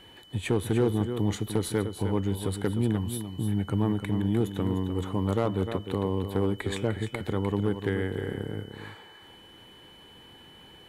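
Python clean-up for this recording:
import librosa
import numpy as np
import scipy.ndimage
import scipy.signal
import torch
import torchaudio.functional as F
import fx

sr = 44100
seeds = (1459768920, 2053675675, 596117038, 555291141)

y = fx.fix_declip(x, sr, threshold_db=-16.5)
y = fx.notch(y, sr, hz=3000.0, q=30.0)
y = fx.fix_echo_inverse(y, sr, delay_ms=302, level_db=-9.0)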